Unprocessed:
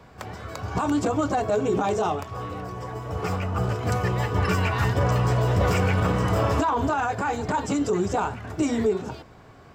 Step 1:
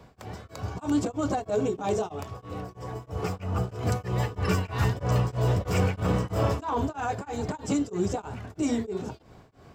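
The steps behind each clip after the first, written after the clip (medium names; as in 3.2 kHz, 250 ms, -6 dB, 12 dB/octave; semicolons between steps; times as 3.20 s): peaking EQ 1.5 kHz -5 dB 1.8 oct; tremolo of two beating tones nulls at 3.1 Hz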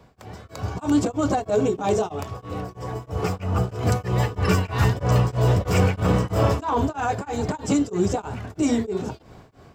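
level rider gain up to 6.5 dB; trim -1 dB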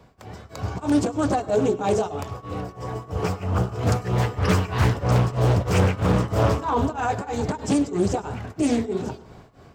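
on a send at -15.5 dB: reverberation RT60 0.45 s, pre-delay 92 ms; on the sum: loudspeaker Doppler distortion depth 0.42 ms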